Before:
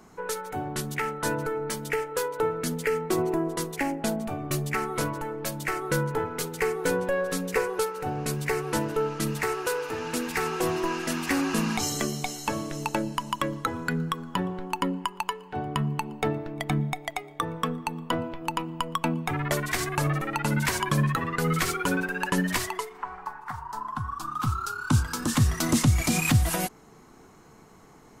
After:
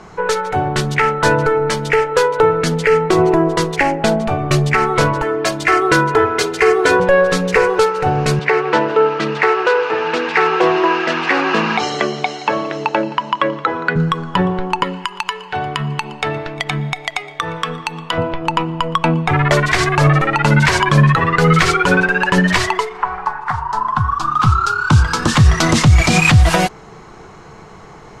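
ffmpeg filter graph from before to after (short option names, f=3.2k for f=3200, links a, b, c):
-filter_complex "[0:a]asettb=1/sr,asplit=3[a][b][c];[a]atrim=end=5.224[d];[b]atrim=start=5.22:end=7,asetpts=PTS-STARTPTS,afade=t=in:d=0.004:c=qsin,afade=t=out:st=1.776:d=0.004:c=qsin,highpass=f=120:p=1,aecho=1:1:2.9:0.78,atrim=end_sample=78498[e];[c]atrim=start=6.996[f];[d][e]acrossfade=d=0.004:c1=hsin:c2=qsin[g];[g][f]acrossfade=d=0.004:c1=qsin:c2=hsin,asettb=1/sr,asplit=3[h][i][j];[h]atrim=end=8.394[k];[i]atrim=start=8.39:end=13.96,asetpts=PTS-STARTPTS,afade=t=in:d=0.004:c=qsin,afade=t=out:st=5.566:d=0.004:c=qsin,highpass=280,lowpass=3.5k,aecho=1:1:173:0.0794,atrim=end_sample=245637[l];[j]atrim=start=13.956[m];[k][l]acrossfade=d=0.004:c1=hsin:c2=qsin[n];[n][m]acrossfade=d=0.004:c1=qsin:c2=hsin,asettb=1/sr,asplit=3[o][p][q];[o]atrim=end=14.834[r];[p]atrim=start=14.83:end=18.18,asetpts=PTS-STARTPTS,afade=t=in:d=0.004:c=qsin,afade=t=out:st=3.346:d=0.004:c=qsin,tiltshelf=f=1.1k:g=-7.5,acompressor=threshold=-31dB:ratio=2:attack=3.2:release=140:knee=1:detection=peak[s];[q]atrim=start=18.176[t];[r][s]acrossfade=d=0.004:c1=hsin:c2=qsin[u];[u][t]acrossfade=d=0.004:c1=qsin:c2=hsin,lowpass=4.8k,equalizer=f=260:t=o:w=0.43:g=-12,alimiter=level_in=17dB:limit=-1dB:release=50:level=0:latency=1,volume=-1dB"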